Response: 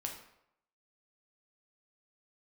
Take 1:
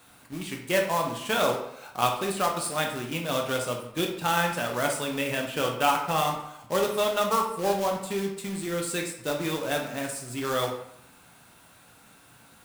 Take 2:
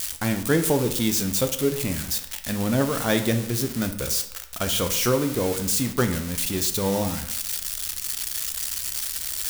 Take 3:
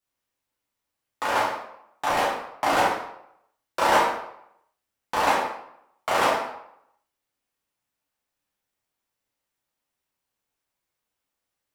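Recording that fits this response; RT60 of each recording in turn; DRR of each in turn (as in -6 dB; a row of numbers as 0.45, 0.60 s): 1; 0.75, 0.75, 0.75 s; 1.0, 6.5, -6.5 dB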